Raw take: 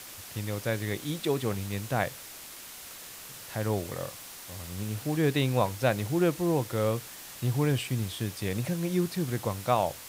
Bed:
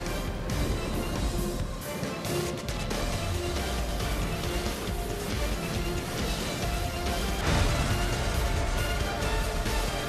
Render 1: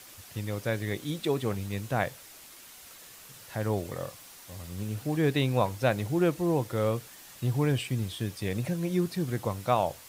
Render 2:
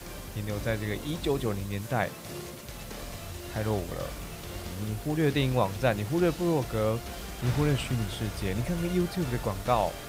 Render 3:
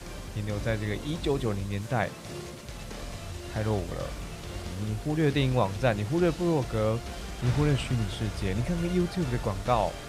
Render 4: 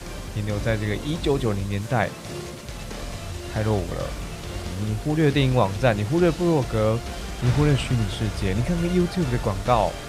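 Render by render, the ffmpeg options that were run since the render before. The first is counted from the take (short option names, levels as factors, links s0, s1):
-af "afftdn=nr=6:nf=-45"
-filter_complex "[1:a]volume=0.316[s0];[0:a][s0]amix=inputs=2:normalize=0"
-af "lowpass=9100,lowshelf=f=140:g=3"
-af "volume=1.88"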